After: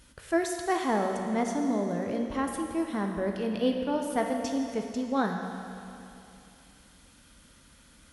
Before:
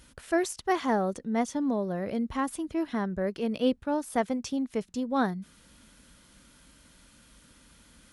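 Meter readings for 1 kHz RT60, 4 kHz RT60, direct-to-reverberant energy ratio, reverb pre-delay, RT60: 2.8 s, 2.7 s, 2.5 dB, 13 ms, 2.8 s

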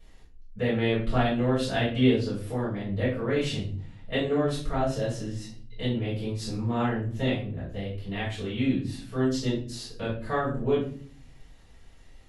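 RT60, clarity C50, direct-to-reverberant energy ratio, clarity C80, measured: 0.45 s, 4.5 dB, −10.5 dB, 10.0 dB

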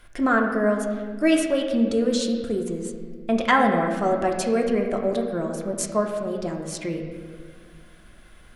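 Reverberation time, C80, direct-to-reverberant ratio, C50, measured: 1.8 s, 6.0 dB, 1.0 dB, 4.5 dB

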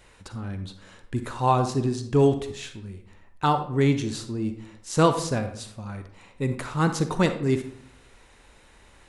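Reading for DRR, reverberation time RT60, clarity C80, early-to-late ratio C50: 8.0 dB, 0.65 s, 12.5 dB, 9.0 dB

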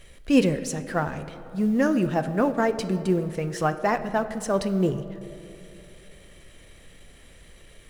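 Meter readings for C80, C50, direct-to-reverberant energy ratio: 13.5 dB, 12.0 dB, 10.0 dB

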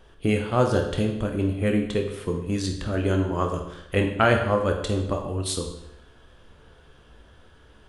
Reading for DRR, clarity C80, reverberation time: 2.5 dB, 9.0 dB, 0.85 s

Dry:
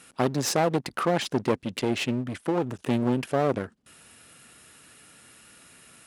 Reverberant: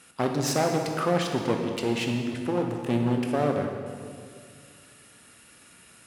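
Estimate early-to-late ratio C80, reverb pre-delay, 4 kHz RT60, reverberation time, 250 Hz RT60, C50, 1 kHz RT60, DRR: 5.0 dB, 17 ms, 1.6 s, 2.1 s, 2.4 s, 4.0 dB, 1.9 s, 2.5 dB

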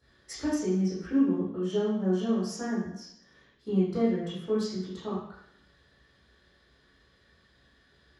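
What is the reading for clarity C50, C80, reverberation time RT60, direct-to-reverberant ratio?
1.5 dB, 5.0 dB, 0.70 s, −11.0 dB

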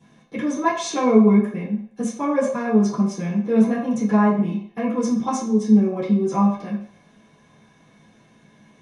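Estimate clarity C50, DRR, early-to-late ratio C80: 5.5 dB, −11.5 dB, 8.5 dB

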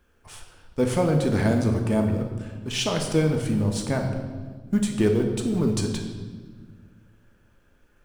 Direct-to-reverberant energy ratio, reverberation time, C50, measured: 2.5 dB, 1.5 s, 6.0 dB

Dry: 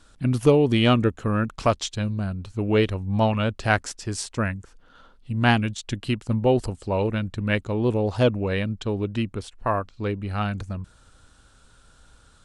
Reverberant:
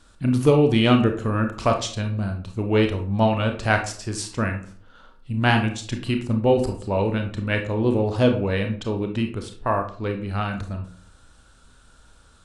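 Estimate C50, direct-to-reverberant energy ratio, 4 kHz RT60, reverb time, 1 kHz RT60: 8.5 dB, 4.0 dB, 0.30 s, 0.50 s, 0.45 s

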